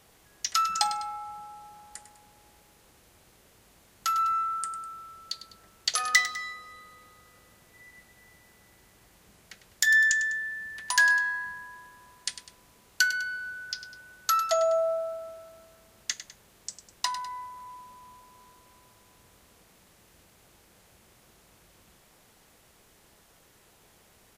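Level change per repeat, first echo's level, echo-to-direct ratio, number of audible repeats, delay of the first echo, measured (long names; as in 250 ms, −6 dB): −7.0 dB, −12.5 dB, −11.5 dB, 2, 101 ms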